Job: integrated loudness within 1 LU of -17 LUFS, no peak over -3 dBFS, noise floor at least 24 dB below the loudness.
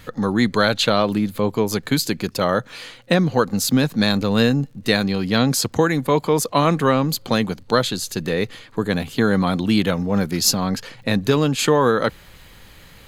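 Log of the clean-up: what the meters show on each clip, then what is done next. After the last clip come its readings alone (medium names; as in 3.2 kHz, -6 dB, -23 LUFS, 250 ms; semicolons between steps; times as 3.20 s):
tick rate 46 per s; loudness -20.0 LUFS; peak level -2.0 dBFS; loudness target -17.0 LUFS
-> de-click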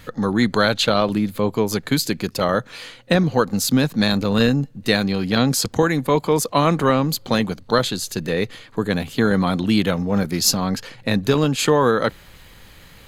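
tick rate 1.5 per s; loudness -20.0 LUFS; peak level -2.0 dBFS; loudness target -17.0 LUFS
-> trim +3 dB; peak limiter -3 dBFS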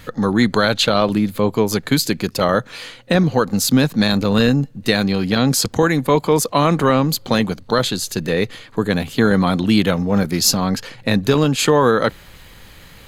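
loudness -17.5 LUFS; peak level -3.0 dBFS; noise floor -43 dBFS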